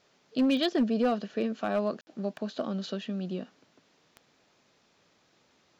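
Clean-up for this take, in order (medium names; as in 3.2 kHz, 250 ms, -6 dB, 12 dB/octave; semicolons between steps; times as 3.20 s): clip repair -19.5 dBFS; de-click; room tone fill 2.01–2.07 s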